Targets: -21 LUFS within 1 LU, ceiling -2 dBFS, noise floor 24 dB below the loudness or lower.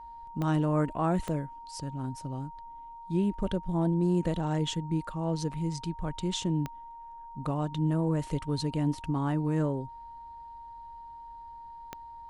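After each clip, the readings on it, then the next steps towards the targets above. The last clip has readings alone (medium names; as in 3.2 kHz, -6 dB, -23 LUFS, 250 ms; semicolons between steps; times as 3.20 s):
clicks found 4; steady tone 930 Hz; tone level -43 dBFS; loudness -31.0 LUFS; peak level -16.0 dBFS; loudness target -21.0 LUFS
-> de-click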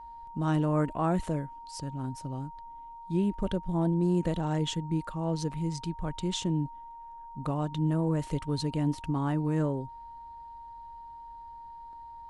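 clicks found 0; steady tone 930 Hz; tone level -43 dBFS
-> band-stop 930 Hz, Q 30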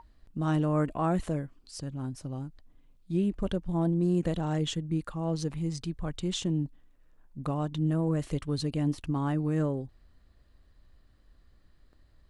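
steady tone not found; loudness -31.0 LUFS; peak level -16.5 dBFS; loudness target -21.0 LUFS
-> trim +10 dB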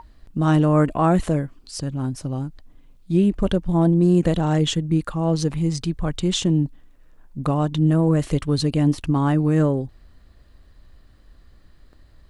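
loudness -21.0 LUFS; peak level -6.5 dBFS; noise floor -52 dBFS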